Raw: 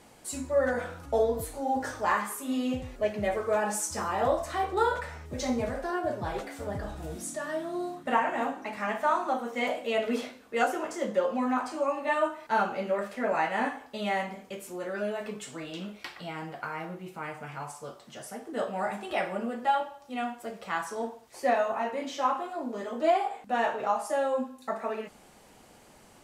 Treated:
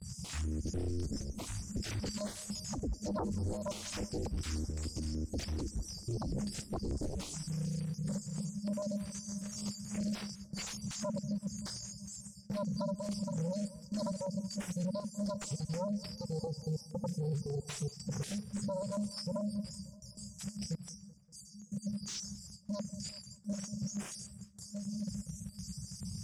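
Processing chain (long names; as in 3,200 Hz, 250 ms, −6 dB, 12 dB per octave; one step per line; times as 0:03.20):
time-frequency cells dropped at random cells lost 31%
high-pass filter 55 Hz 24 dB per octave
brick-wall band-stop 210–4,600 Hz
noise gate with hold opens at −56 dBFS
0:20.75–0:21.72: guitar amp tone stack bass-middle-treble 6-0-2
downward compressor 3 to 1, threshold −48 dBFS, peak gain reduction 13 dB
sine wavefolder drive 19 dB, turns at −32.5 dBFS
high-frequency loss of the air 92 metres
feedback echo with a low-pass in the loop 191 ms, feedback 66%, low-pass 1,900 Hz, level −18 dB
notch on a step sequencer 6.8 Hz 270–6,600 Hz
level +1 dB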